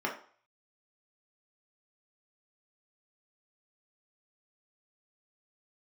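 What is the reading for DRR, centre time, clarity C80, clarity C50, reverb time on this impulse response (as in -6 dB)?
-2.0 dB, 22 ms, 13.0 dB, 8.0 dB, 0.45 s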